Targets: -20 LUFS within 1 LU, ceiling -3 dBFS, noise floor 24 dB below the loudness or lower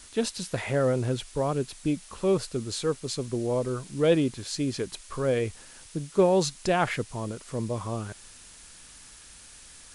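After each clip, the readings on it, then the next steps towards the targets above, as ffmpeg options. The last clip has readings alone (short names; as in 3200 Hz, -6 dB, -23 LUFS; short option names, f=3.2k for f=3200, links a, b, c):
noise floor -50 dBFS; noise floor target -52 dBFS; loudness -28.0 LUFS; peak -10.5 dBFS; loudness target -20.0 LUFS
-> -af "afftdn=nr=6:nf=-50"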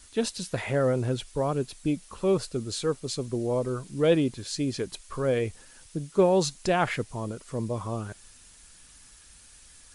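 noise floor -53 dBFS; loudness -28.5 LUFS; peak -10.5 dBFS; loudness target -20.0 LUFS
-> -af "volume=8.5dB,alimiter=limit=-3dB:level=0:latency=1"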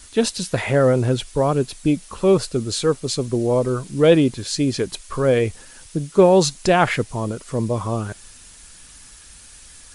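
loudness -20.0 LUFS; peak -3.0 dBFS; noise floor -45 dBFS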